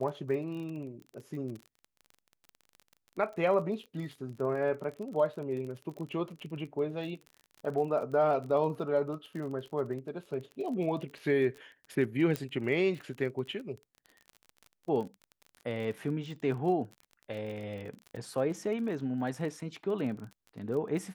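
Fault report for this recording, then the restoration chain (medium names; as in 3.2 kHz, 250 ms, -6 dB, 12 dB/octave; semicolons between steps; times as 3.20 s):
crackle 31 per s -39 dBFS
12.36 s: pop -18 dBFS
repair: de-click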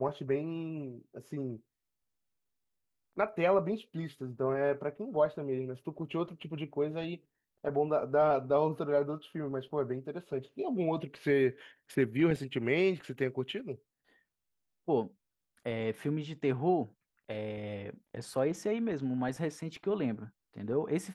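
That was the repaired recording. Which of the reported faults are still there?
12.36 s: pop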